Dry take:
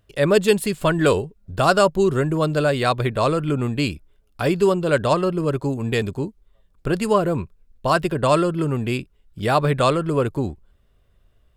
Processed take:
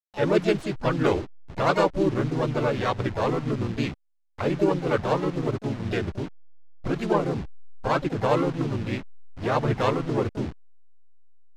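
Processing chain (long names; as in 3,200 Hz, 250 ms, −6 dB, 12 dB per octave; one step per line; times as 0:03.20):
hold until the input has moved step −27.5 dBFS
high-frequency loss of the air 110 metres
pitch-shifted copies added −4 semitones −4 dB, −3 semitones −3 dB, +7 semitones −9 dB
level −7.5 dB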